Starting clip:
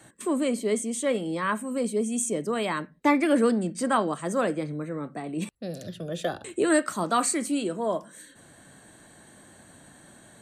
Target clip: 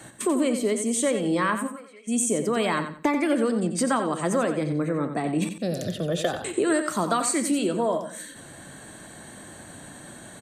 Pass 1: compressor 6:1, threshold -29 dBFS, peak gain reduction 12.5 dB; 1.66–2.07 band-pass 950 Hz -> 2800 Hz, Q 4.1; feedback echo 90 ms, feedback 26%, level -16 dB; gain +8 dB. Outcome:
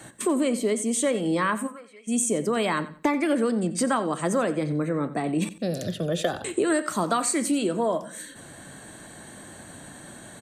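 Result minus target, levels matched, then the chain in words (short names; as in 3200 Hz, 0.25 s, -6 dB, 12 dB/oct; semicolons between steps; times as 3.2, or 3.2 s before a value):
echo-to-direct -7 dB
compressor 6:1, threshold -29 dBFS, peak gain reduction 12.5 dB; 1.66–2.07 band-pass 950 Hz -> 2800 Hz, Q 4.1; feedback echo 90 ms, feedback 26%, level -9 dB; gain +8 dB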